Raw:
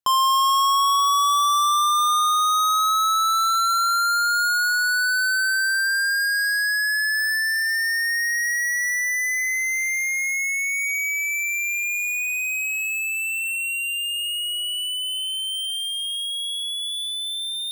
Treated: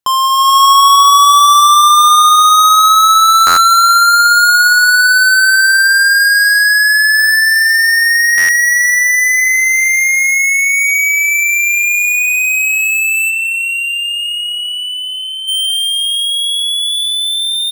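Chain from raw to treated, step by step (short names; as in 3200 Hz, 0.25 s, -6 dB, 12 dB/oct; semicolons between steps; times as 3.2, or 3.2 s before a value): 13.29–15.47 LPF 3500 Hz -> 1400 Hz 6 dB/oct; feedback echo 0.174 s, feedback 58%, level -17 dB; AGC gain up to 6.5 dB; stuck buffer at 3.46/8.37, samples 512, times 9; gain +6 dB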